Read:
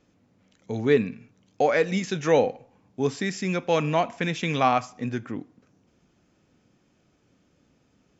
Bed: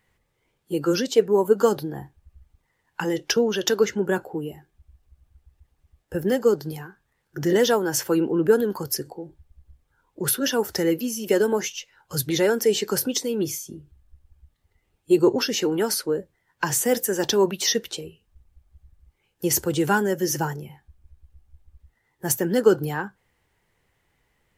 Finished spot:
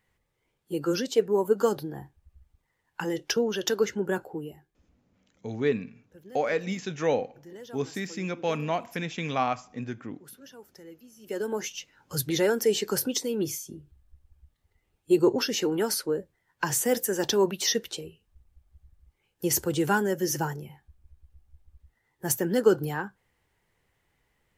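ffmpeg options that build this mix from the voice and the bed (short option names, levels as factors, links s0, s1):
-filter_complex "[0:a]adelay=4750,volume=0.531[s0];[1:a]volume=7.08,afade=t=out:st=4.3:d=0.8:silence=0.0944061,afade=t=in:st=11.16:d=0.66:silence=0.0794328[s1];[s0][s1]amix=inputs=2:normalize=0"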